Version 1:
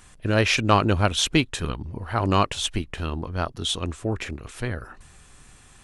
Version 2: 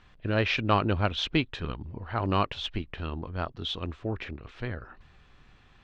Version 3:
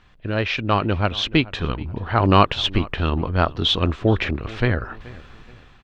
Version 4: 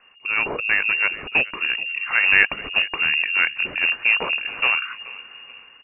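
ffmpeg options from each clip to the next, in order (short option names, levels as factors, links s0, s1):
-af "lowpass=f=4100:w=0.5412,lowpass=f=4100:w=1.3066,volume=0.531"
-filter_complex "[0:a]dynaudnorm=f=570:g=5:m=4.47,asplit=2[s0][s1];[s1]adelay=428,lowpass=f=2400:p=1,volume=0.1,asplit=2[s2][s3];[s3]adelay=428,lowpass=f=2400:p=1,volume=0.39,asplit=2[s4][s5];[s5]adelay=428,lowpass=f=2400:p=1,volume=0.39[s6];[s0][s2][s4][s6]amix=inputs=4:normalize=0,volume=1.41"
-filter_complex "[0:a]afreqshift=150,asplit=2[s0][s1];[s1]aeval=exprs='(mod(3.98*val(0)+1,2)-1)/3.98':c=same,volume=0.376[s2];[s0][s2]amix=inputs=2:normalize=0,lowpass=f=2600:t=q:w=0.5098,lowpass=f=2600:t=q:w=0.6013,lowpass=f=2600:t=q:w=0.9,lowpass=f=2600:t=q:w=2.563,afreqshift=-3000,volume=0.794"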